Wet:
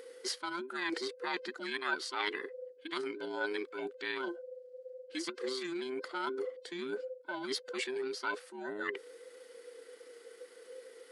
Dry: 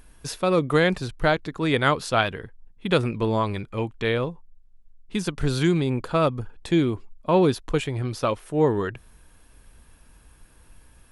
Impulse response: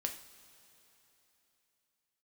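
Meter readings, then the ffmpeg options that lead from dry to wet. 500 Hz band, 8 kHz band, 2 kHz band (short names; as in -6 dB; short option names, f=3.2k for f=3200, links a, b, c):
-14.5 dB, -7.5 dB, -8.0 dB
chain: -af "afftfilt=real='real(if(between(b,1,1008),(2*floor((b-1)/24)+1)*24-b,b),0)':imag='imag(if(between(b,1,1008),(2*floor((b-1)/24)+1)*24-b,b),0)*if(between(b,1,1008),-1,1)':win_size=2048:overlap=0.75,areverse,acompressor=threshold=-30dB:ratio=10,areverse,tremolo=f=29:d=0.182,highpass=f=330:w=0.5412,highpass=f=330:w=1.3066,equalizer=f=630:t=q:w=4:g=-4,equalizer=f=980:t=q:w=4:g=-7,equalizer=f=1.6k:t=q:w=4:g=7,equalizer=f=4.6k:t=q:w=4:g=8,lowpass=f=9.9k:w=0.5412,lowpass=f=9.9k:w=1.3066"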